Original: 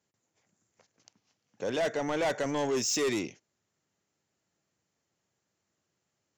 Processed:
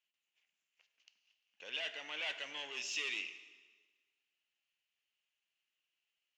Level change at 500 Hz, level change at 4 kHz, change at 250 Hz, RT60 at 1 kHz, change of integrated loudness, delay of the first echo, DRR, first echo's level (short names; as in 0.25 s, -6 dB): -23.0 dB, -2.5 dB, -27.5 dB, 1.4 s, -9.5 dB, none, 10.0 dB, none